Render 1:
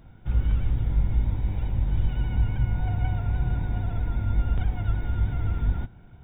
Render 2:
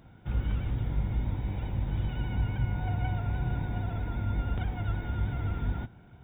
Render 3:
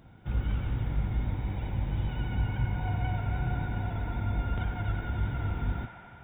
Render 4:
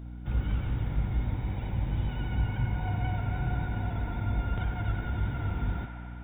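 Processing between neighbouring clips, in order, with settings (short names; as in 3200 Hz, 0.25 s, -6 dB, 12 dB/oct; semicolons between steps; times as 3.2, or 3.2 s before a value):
HPF 110 Hz 6 dB/oct
band-limited delay 90 ms, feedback 83%, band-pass 1400 Hz, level -6.5 dB
hum 60 Hz, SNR 11 dB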